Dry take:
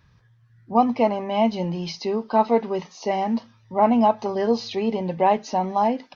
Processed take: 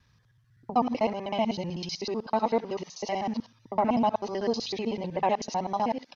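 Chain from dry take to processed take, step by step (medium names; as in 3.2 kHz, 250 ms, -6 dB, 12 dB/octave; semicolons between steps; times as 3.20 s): time reversed locally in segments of 63 ms; resampled via 32 kHz; treble shelf 3.4 kHz +10.5 dB; trim -7 dB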